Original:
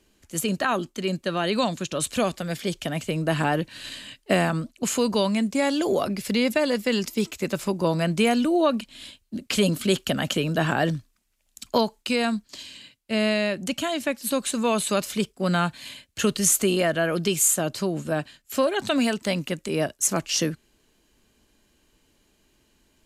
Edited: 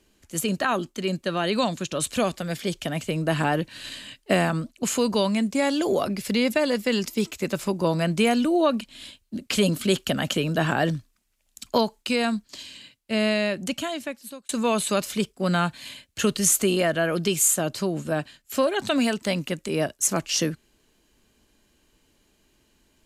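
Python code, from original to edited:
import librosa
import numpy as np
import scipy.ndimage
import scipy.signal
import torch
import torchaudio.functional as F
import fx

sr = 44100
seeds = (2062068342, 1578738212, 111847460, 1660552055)

y = fx.edit(x, sr, fx.fade_out_span(start_s=13.65, length_s=0.84), tone=tone)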